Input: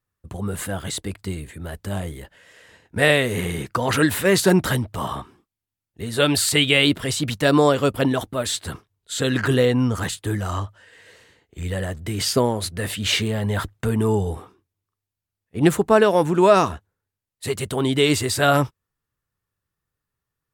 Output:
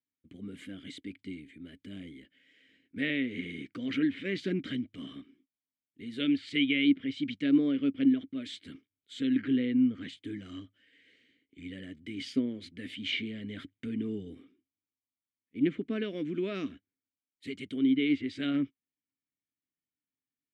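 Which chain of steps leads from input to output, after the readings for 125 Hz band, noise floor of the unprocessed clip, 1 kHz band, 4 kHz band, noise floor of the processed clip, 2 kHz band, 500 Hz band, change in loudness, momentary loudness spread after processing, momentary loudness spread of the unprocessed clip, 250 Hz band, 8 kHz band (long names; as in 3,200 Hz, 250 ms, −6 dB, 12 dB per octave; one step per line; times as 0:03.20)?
−20.5 dB, below −85 dBFS, below −30 dB, −14.5 dB, below −85 dBFS, −14.0 dB, −19.5 dB, −10.5 dB, 19 LU, 16 LU, −5.5 dB, below −30 dB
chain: formant filter i
treble cut that deepens with the level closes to 2,700 Hz, closed at −25.5 dBFS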